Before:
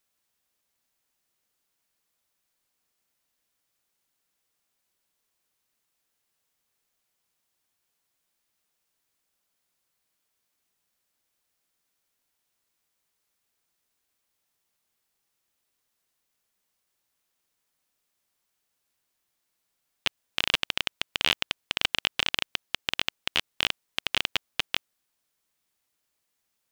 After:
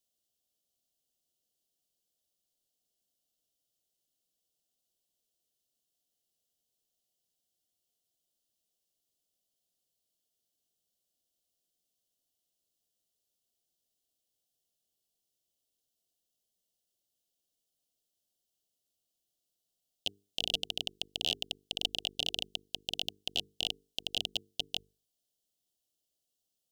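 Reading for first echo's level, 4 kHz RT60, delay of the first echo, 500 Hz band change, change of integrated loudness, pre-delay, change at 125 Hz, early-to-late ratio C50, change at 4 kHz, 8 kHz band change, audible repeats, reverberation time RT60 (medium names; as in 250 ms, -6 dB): no echo, no reverb, no echo, -5.5 dB, -7.0 dB, no reverb, -6.0 dB, no reverb, -5.0 dB, -4.5 dB, no echo, no reverb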